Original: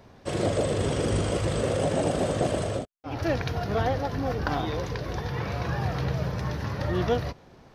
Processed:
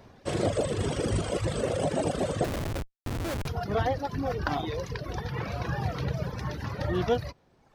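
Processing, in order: reverb removal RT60 1.2 s; 2.44–3.48 Schmitt trigger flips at -31 dBFS

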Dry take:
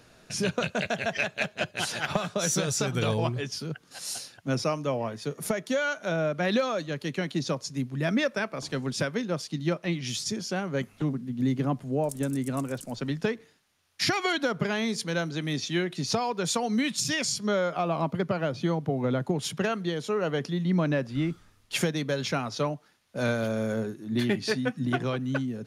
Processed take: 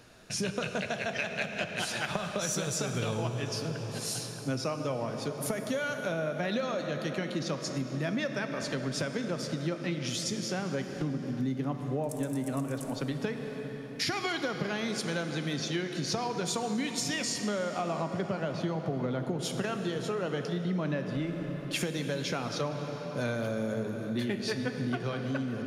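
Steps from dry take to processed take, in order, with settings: reverb RT60 5.0 s, pre-delay 10 ms, DRR 6.5 dB; compressor 3:1, threshold -30 dBFS, peak gain reduction 8 dB

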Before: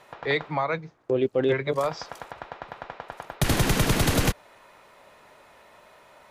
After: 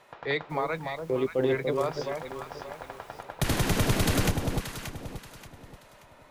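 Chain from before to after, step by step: 0.49–3.21 added noise pink -52 dBFS; echo with dull and thin repeats by turns 0.29 s, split 970 Hz, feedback 57%, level -4 dB; gain -4 dB

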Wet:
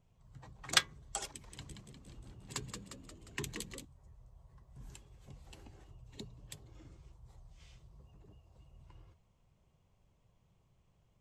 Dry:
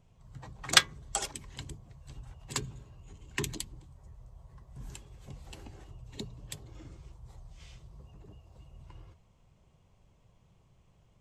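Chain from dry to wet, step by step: 1.26–3.85 frequency-shifting echo 0.177 s, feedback 57%, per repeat +67 Hz, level -6 dB; gain -7 dB

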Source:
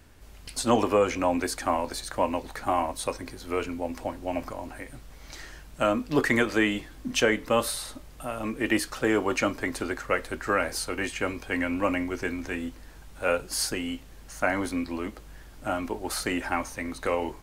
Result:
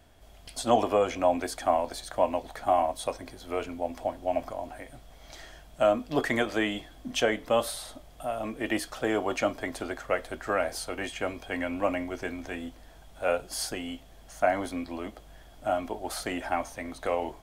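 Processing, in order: small resonant body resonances 680/3300 Hz, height 13 dB, ringing for 25 ms; gain -5 dB

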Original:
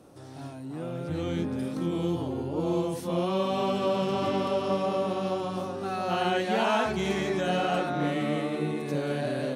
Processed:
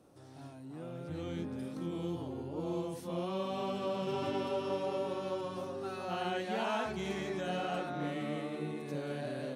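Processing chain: 4.06–6.05 comb 7.4 ms, depth 71%; gain -9 dB

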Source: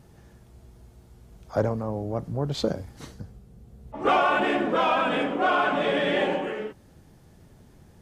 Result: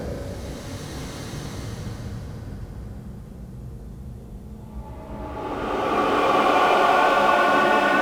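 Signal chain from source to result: power-law curve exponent 0.7; Paulstretch 5×, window 0.50 s, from 2.82; tape echo 0.445 s, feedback 69%, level -7 dB, low-pass 2200 Hz

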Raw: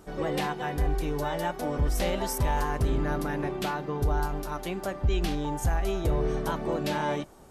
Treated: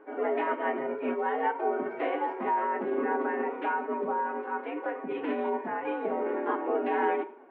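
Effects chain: FDN reverb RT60 0.49 s, low-frequency decay 1×, high-frequency decay 0.95×, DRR 5.5 dB; mistuned SSB +57 Hz 180–2300 Hz; formant-preserving pitch shift +3 st

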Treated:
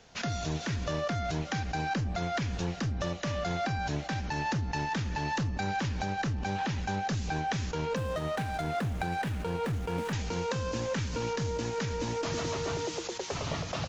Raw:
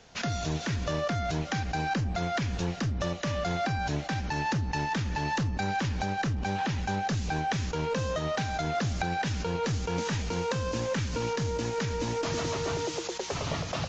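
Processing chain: 7.96–10.13 median filter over 9 samples; feedback echo 1.083 s, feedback 51%, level -24 dB; gain -2 dB

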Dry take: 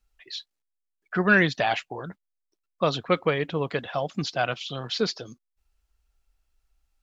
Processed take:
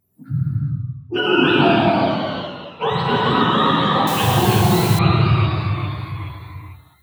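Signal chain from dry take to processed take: spectrum mirrored in octaves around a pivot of 730 Hz; 1.46–2.98 tone controls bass -9 dB, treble -1 dB; limiter -19.5 dBFS, peak gain reduction 11.5 dB; non-linear reverb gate 0.43 s flat, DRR -6 dB; echoes that change speed 80 ms, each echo -1 st, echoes 3, each echo -6 dB; 4.07–4.99 requantised 6-bit, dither triangular; gain +7 dB

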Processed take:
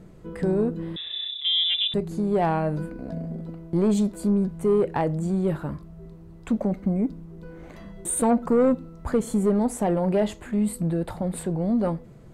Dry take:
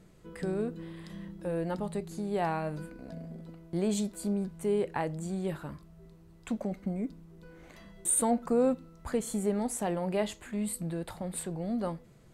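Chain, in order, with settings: tilt shelf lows +5.5 dB, about 1500 Hz; soft clip -19 dBFS, distortion -15 dB; 0.96–1.94 inverted band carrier 3700 Hz; gain +5.5 dB

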